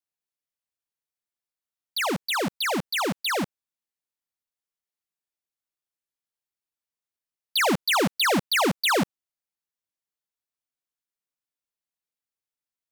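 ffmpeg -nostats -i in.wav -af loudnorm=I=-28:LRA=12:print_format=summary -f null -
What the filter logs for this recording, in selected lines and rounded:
Input Integrated:    -24.2 LUFS
Input True Peak:     -19.5 dBTP
Input LRA:             9.4 LU
Input Threshold:     -34.3 LUFS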